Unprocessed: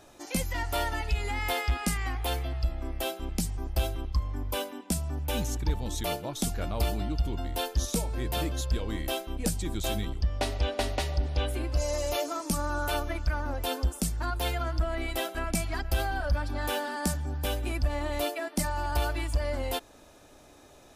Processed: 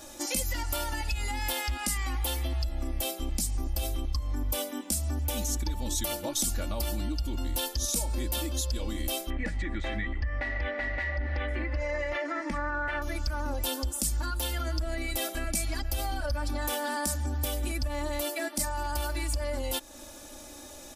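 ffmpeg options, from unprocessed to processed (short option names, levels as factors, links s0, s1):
-filter_complex "[0:a]asettb=1/sr,asplit=3[s0][s1][s2];[s0]atrim=end=9.304[s3];[s1]atrim=start=9.3:end=13.02,asetpts=PTS-STARTPTS,afade=t=in:d=0.004:c=qsin,afade=t=out:st=3.716:d=0.004:c=qsin,lowpass=f=1900:t=q:w=14[s4];[s2]atrim=start=13.016[s5];[s3][s4]acrossfade=d=0.004:c1=hsin:c2=qsin[s6];[s6][s5]acrossfade=d=0.004:c1=qsin:c2=hsin,aecho=1:1:3.5:0.77,alimiter=level_in=1.5:limit=0.0631:level=0:latency=1:release=252,volume=0.668,bass=f=250:g=1,treble=f=4000:g=10,volume=1.5"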